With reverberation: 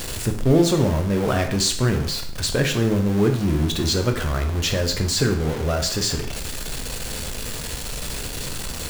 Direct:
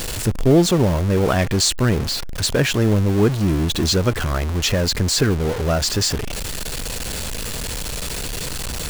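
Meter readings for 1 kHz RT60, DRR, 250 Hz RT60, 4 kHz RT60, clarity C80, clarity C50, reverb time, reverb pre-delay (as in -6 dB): 0.55 s, 4.5 dB, 0.55 s, 0.55 s, 12.5 dB, 9.0 dB, 0.55 s, 5 ms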